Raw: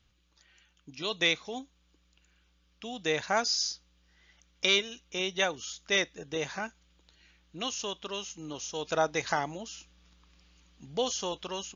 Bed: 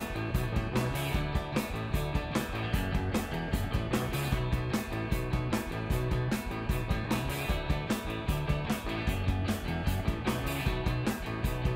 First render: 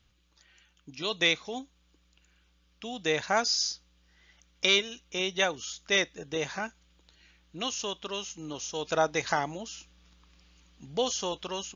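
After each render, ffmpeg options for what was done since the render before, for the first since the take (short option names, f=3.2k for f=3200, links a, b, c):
-af "volume=1.5dB"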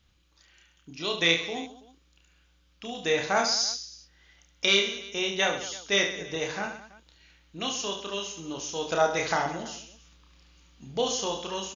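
-af "aecho=1:1:30|72|130.8|213.1|328.4:0.631|0.398|0.251|0.158|0.1"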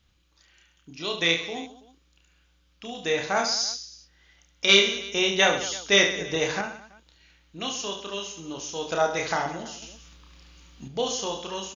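-filter_complex "[0:a]asettb=1/sr,asplit=3[a][b][c];[a]atrim=end=9.824[d];[b]atrim=start=9.82:end=10.88,asetpts=PTS-STARTPTS,afade=t=in:d=0.004:c=qsin,afade=t=out:st=1.056:d=0.004:c=qsin,acontrast=59[e];[c]atrim=start=10.876[f];[d][e]acrossfade=d=0.004:c1=hsin:c2=qsin[g];[g][f]acrossfade=d=0.004:c1=qsin:c2=hsin,asplit=3[h][i][j];[h]atrim=end=4.692[k];[i]atrim=start=4.688:end=6.612,asetpts=PTS-STARTPTS,volume=5.5dB[l];[j]atrim=start=6.608[m];[k][l]acrossfade=d=0.004:c1=hsin:c2=hsin[n];[n][m]acrossfade=d=0.004:c1=hsin:c2=hsin"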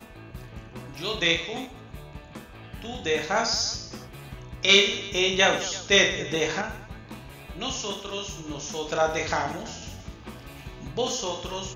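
-filter_complex "[1:a]volume=-10.5dB[a];[0:a][a]amix=inputs=2:normalize=0"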